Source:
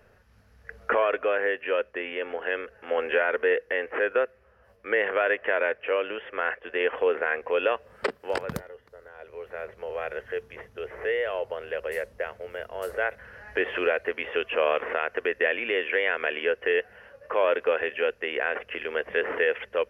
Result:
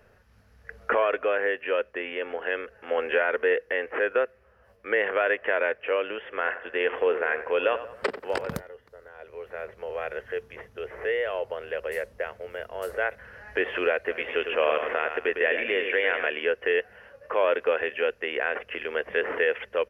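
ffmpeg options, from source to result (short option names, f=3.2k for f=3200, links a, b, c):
-filter_complex "[0:a]asplit=3[a][b][c];[a]afade=t=out:st=6.3:d=0.02[d];[b]asplit=2[e][f];[f]adelay=91,lowpass=f=2.4k:p=1,volume=-11.5dB,asplit=2[g][h];[h]adelay=91,lowpass=f=2.4k:p=1,volume=0.47,asplit=2[i][j];[j]adelay=91,lowpass=f=2.4k:p=1,volume=0.47,asplit=2[k][l];[l]adelay=91,lowpass=f=2.4k:p=1,volume=0.47,asplit=2[m][n];[n]adelay=91,lowpass=f=2.4k:p=1,volume=0.47[o];[e][g][i][k][m][o]amix=inputs=6:normalize=0,afade=t=in:st=6.3:d=0.02,afade=t=out:st=8.55:d=0.02[p];[c]afade=t=in:st=8.55:d=0.02[q];[d][p][q]amix=inputs=3:normalize=0,asplit=3[r][s][t];[r]afade=t=out:st=14.08:d=0.02[u];[s]aecho=1:1:106|212|318|424:0.447|0.143|0.0457|0.0146,afade=t=in:st=14.08:d=0.02,afade=t=out:st=16.28:d=0.02[v];[t]afade=t=in:st=16.28:d=0.02[w];[u][v][w]amix=inputs=3:normalize=0"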